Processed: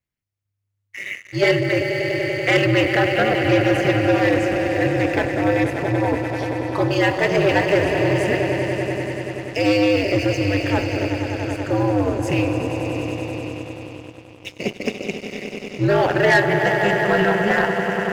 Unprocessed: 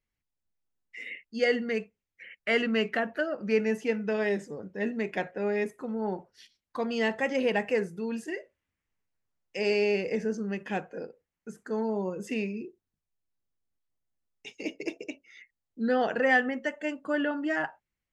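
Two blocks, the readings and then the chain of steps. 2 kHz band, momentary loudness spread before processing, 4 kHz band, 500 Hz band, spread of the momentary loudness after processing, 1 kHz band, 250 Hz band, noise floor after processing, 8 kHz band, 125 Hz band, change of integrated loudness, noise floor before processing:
+11.0 dB, 16 LU, +12.5 dB, +10.5 dB, 12 LU, +12.5 dB, +11.0 dB, -71 dBFS, +14.0 dB, +22.0 dB, +10.5 dB, under -85 dBFS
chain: swelling echo 96 ms, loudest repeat 5, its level -11.5 dB; ring modulator 100 Hz; sample leveller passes 2; gain +6 dB

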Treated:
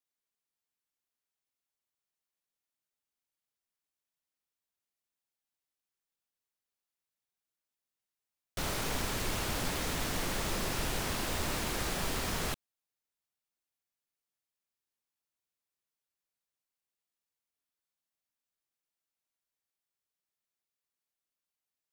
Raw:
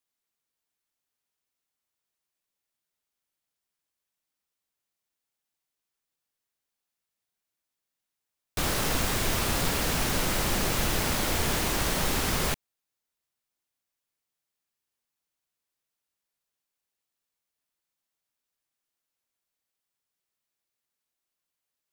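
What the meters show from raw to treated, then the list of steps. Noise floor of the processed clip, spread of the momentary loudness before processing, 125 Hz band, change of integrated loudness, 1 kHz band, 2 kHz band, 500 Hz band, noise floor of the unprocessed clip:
under -85 dBFS, 3 LU, -7.0 dB, -7.5 dB, -6.5 dB, -6.5 dB, -6.5 dB, under -85 dBFS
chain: Doppler distortion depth 0.96 ms; gain -6.5 dB

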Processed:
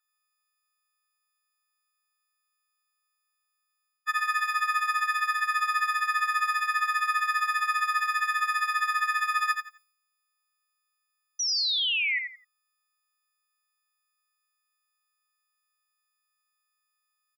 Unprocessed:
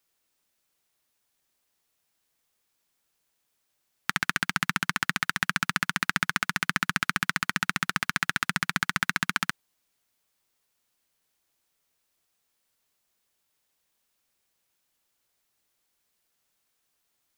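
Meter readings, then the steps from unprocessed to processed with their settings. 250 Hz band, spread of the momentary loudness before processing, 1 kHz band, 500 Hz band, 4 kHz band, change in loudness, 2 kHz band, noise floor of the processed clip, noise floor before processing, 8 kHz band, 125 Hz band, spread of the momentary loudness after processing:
under -40 dB, 2 LU, +6.5 dB, under -20 dB, +3.0 dB, +2.0 dB, +0.5 dB, -80 dBFS, -77 dBFS, -1.0 dB, under -40 dB, 5 LU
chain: frequency quantiser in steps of 6 st; gate -57 dBFS, range -10 dB; high shelf 5900 Hz -9 dB; reverse; compressor, threshold -27 dBFS, peak gain reduction 11.5 dB; reverse; resonant high-pass 1400 Hz, resonance Q 13; painted sound fall, 11.39–12.19, 1900–6000 Hz -22 dBFS; feedback echo 86 ms, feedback 22%, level -6 dB; gain -5.5 dB

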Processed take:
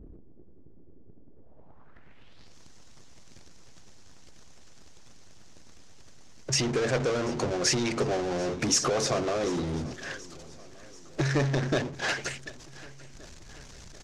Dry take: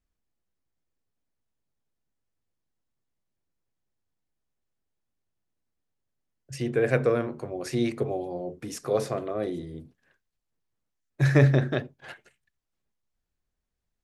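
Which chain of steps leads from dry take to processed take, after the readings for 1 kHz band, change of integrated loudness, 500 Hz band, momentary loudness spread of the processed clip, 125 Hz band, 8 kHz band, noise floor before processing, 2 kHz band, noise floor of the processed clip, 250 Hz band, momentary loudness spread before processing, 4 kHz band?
+4.0 dB, -1.5 dB, -1.5 dB, 22 LU, -5.5 dB, +15.0 dB, -83 dBFS, +1.5 dB, -47 dBFS, -1.0 dB, 22 LU, +12.5 dB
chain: power-law curve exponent 0.5; compressor 2:1, threshold -30 dBFS, peak gain reduction 10 dB; low-pass sweep 360 Hz -> 6200 Hz, 1.29–2.56; harmonic-percussive split harmonic -6 dB; on a send: feedback echo 0.736 s, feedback 56%, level -20.5 dB; on the sum: gain +2 dB

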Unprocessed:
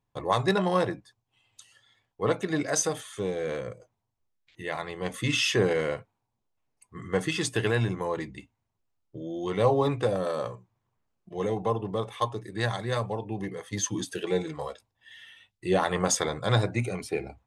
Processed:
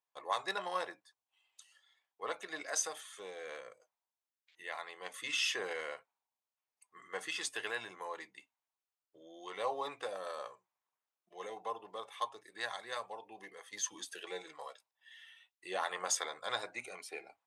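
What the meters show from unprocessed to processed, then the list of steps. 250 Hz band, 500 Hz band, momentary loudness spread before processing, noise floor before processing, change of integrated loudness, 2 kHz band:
-24.5 dB, -15.5 dB, 15 LU, -81 dBFS, -11.0 dB, -7.0 dB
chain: HPF 780 Hz 12 dB/oct; gain -7 dB

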